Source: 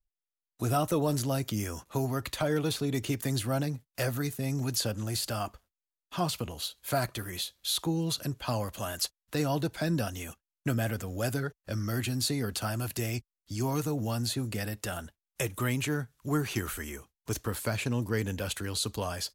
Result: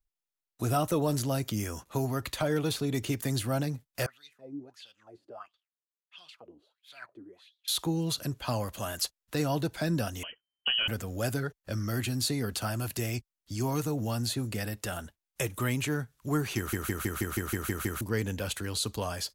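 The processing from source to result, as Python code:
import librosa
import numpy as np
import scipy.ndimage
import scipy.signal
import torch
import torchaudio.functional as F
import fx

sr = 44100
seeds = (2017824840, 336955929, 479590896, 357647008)

y = fx.wah_lfo(x, sr, hz=1.5, low_hz=280.0, high_hz=3700.0, q=7.6, at=(4.06, 7.68))
y = fx.freq_invert(y, sr, carrier_hz=3100, at=(10.23, 10.88))
y = fx.edit(y, sr, fx.stutter_over(start_s=16.57, slice_s=0.16, count=9), tone=tone)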